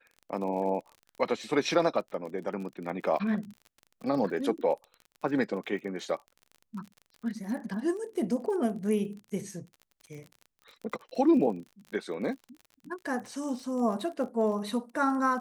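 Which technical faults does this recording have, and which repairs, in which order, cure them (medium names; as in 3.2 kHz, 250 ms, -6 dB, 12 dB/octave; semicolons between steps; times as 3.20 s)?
crackle 38 per s -39 dBFS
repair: de-click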